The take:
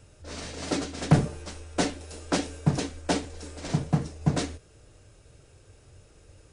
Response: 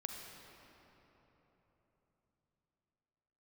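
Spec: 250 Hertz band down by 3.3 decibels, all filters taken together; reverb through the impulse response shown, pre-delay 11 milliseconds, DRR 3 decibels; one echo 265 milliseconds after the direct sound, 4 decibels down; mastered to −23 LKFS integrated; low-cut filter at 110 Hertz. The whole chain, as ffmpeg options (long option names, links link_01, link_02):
-filter_complex "[0:a]highpass=110,equalizer=frequency=250:width_type=o:gain=-4.5,aecho=1:1:265:0.631,asplit=2[link_01][link_02];[1:a]atrim=start_sample=2205,adelay=11[link_03];[link_02][link_03]afir=irnorm=-1:irlink=0,volume=-2dB[link_04];[link_01][link_04]amix=inputs=2:normalize=0,volume=5.5dB"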